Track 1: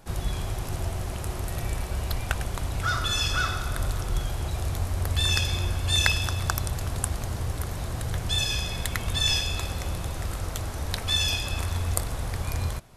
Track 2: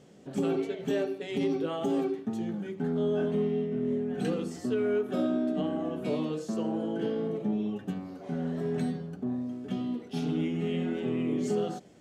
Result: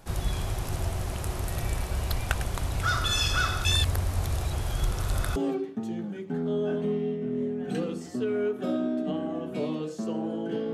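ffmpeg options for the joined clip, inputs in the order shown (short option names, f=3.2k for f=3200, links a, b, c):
-filter_complex "[0:a]apad=whole_dur=10.73,atrim=end=10.73,asplit=2[a][b];[a]atrim=end=3.652[c];[b]atrim=start=3.648:end=5.362,asetpts=PTS-STARTPTS,areverse[d];[1:a]atrim=start=1.858:end=7.23[e];[c][d]acrossfade=d=0.004:c1=hsin:c2=hsin[f];[f][e]acrossfade=d=0.004:c1=hsin:c2=hsin"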